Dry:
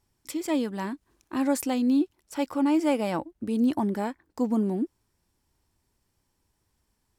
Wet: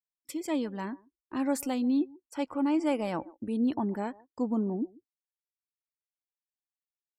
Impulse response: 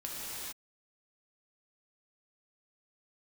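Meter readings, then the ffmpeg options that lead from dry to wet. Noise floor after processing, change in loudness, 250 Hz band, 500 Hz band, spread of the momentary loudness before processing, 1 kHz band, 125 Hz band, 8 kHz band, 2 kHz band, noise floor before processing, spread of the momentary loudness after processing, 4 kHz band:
under -85 dBFS, -4.0 dB, -4.0 dB, -4.0 dB, 11 LU, -4.0 dB, -4.0 dB, -4.5 dB, -4.5 dB, -76 dBFS, 11 LU, -5.0 dB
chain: -filter_complex "[0:a]asplit=2[s0][s1];[s1]adelay=140,highpass=300,lowpass=3400,asoftclip=type=hard:threshold=0.0708,volume=0.1[s2];[s0][s2]amix=inputs=2:normalize=0,afftdn=nr=33:nf=-49,agate=range=0.178:threshold=0.00355:ratio=16:detection=peak,volume=0.631"

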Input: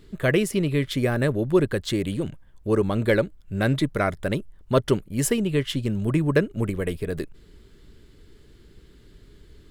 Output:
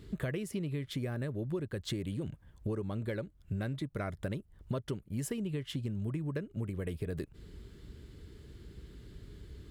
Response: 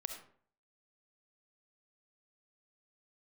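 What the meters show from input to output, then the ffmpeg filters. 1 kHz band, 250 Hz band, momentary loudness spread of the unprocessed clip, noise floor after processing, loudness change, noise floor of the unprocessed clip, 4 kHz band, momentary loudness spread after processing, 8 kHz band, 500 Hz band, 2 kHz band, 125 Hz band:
-17.0 dB, -13.0 dB, 9 LU, -62 dBFS, -13.5 dB, -52 dBFS, -13.5 dB, 16 LU, -15.0 dB, -16.0 dB, -17.0 dB, -10.5 dB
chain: -af "highpass=58,lowshelf=f=160:g=10,acompressor=threshold=0.0316:ratio=12,volume=0.75"

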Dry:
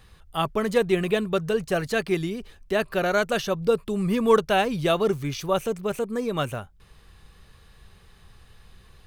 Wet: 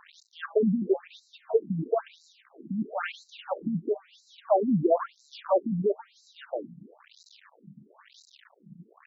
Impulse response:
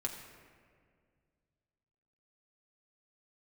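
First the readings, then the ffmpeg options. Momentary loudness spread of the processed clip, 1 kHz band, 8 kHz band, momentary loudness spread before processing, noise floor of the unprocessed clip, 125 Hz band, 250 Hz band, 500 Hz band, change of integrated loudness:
13 LU, -6.0 dB, under -15 dB, 8 LU, -54 dBFS, -5.0 dB, -3.0 dB, -4.5 dB, -4.0 dB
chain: -filter_complex "[0:a]aeval=exprs='val(0)+0.5*0.0631*sgn(val(0))':c=same,afwtdn=0.0631,asplit=2[s0][s1];[1:a]atrim=start_sample=2205[s2];[s1][s2]afir=irnorm=-1:irlink=0,volume=0.168[s3];[s0][s3]amix=inputs=2:normalize=0,afftfilt=real='re*between(b*sr/1024,200*pow(5500/200,0.5+0.5*sin(2*PI*1*pts/sr))/1.41,200*pow(5500/200,0.5+0.5*sin(2*PI*1*pts/sr))*1.41)':imag='im*between(b*sr/1024,200*pow(5500/200,0.5+0.5*sin(2*PI*1*pts/sr))/1.41,200*pow(5500/200,0.5+0.5*sin(2*PI*1*pts/sr))*1.41)':win_size=1024:overlap=0.75"

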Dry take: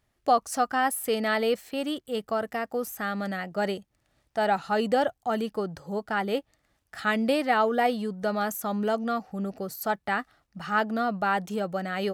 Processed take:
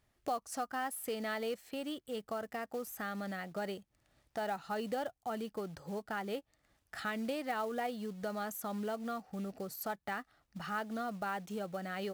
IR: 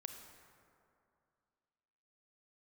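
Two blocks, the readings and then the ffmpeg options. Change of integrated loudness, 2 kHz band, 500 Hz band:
-11.5 dB, -12.0 dB, -11.5 dB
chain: -af "acrusher=bits=5:mode=log:mix=0:aa=0.000001,acompressor=threshold=0.00891:ratio=2,volume=0.794"

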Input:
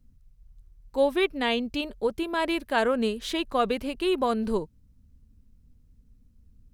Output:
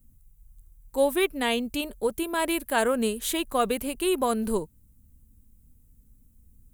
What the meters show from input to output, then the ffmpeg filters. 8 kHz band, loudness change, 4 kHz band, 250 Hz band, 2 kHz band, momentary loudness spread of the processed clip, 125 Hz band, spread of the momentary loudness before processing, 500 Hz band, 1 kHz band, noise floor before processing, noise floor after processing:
+13.0 dB, +0.5 dB, 0.0 dB, 0.0 dB, 0.0 dB, 6 LU, 0.0 dB, 6 LU, 0.0 dB, 0.0 dB, -59 dBFS, -59 dBFS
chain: -af "aexciter=amount=6:drive=5.8:freq=7200"

